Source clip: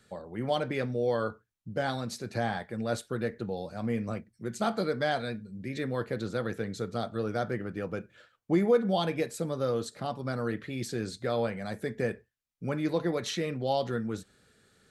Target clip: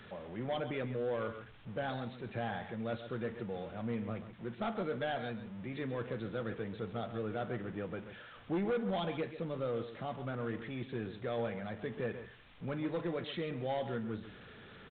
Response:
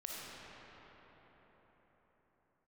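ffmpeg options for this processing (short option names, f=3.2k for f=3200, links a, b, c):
-af "aeval=exprs='val(0)+0.5*0.0106*sgn(val(0))':c=same,aecho=1:1:135:0.251,aresample=8000,volume=22dB,asoftclip=hard,volume=-22dB,aresample=44100,volume=-7.5dB"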